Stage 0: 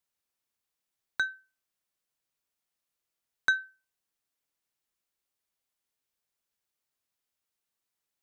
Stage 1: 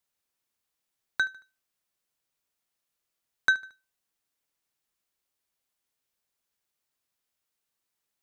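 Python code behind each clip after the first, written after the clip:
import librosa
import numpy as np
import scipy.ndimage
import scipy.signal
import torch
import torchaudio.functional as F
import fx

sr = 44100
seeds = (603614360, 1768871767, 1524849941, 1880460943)

y = fx.echo_feedback(x, sr, ms=75, feedback_pct=42, wet_db=-20.0)
y = y * 10.0 ** (2.5 / 20.0)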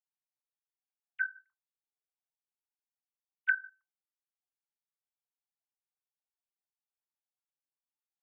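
y = fx.sine_speech(x, sr)
y = scipy.signal.sosfilt(scipy.signal.butter(2, 1000.0, 'lowpass', fs=sr, output='sos'), y)
y = y * 10.0 ** (3.0 / 20.0)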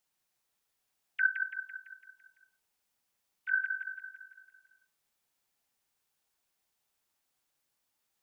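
y = fx.over_compress(x, sr, threshold_db=-36.0, ratio=-1.0)
y = fx.echo_feedback(y, sr, ms=168, feedback_pct=54, wet_db=-6.0)
y = y * 10.0 ** (8.0 / 20.0)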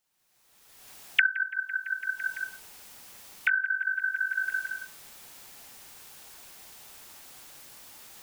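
y = fx.recorder_agc(x, sr, target_db=-20.5, rise_db_per_s=33.0, max_gain_db=30)
y = y * 10.0 ** (1.5 / 20.0)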